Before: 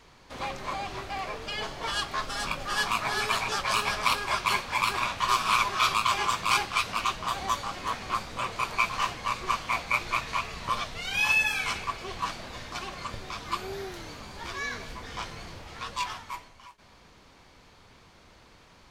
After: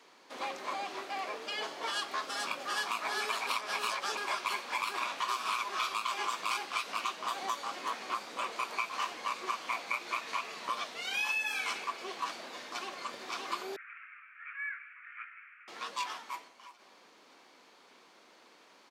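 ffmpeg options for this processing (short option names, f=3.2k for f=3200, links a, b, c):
-filter_complex "[0:a]asplit=2[a][b];[b]afade=t=in:st=12.62:d=0.01,afade=t=out:st=13.05:d=0.01,aecho=0:1:570|1140|1710|2280|2850|3420|3990|4560|5130|5700:0.707946|0.460165|0.299107|0.19442|0.126373|0.0821423|0.0533925|0.0347051|0.0225583|0.0146629[c];[a][c]amix=inputs=2:normalize=0,asettb=1/sr,asplit=3[d][e][f];[d]atrim=end=13.764[g];[e]atrim=start=13.76:end=15.68,asetpts=PTS-STARTPTS,afade=t=in:d=0.004:c=qsin,afade=t=out:st=1.916:d=0.004:c=qsin,asuperpass=centerf=1800:order=12:qfactor=1.4[h];[f]atrim=start=15.676[i];[g][h]acrossfade=d=0.004:c1=hsin:c2=qsin[j];[j][i]acrossfade=d=0.004:c1=qsin:c2=hsin,asplit=3[k][l][m];[k]atrim=end=3.472[n];[l]atrim=start=3.468:end=4.172,asetpts=PTS-STARTPTS,areverse[o];[m]atrim=start=4.168[p];[n][o]acrossfade=d=0.004:c1=hsin:c2=hsin[q];[q][p]acrossfade=d=0.004:c1=hsin:c2=hsin,highpass=f=260:w=0.5412,highpass=f=260:w=1.3066,acompressor=threshold=-27dB:ratio=6,volume=-3dB"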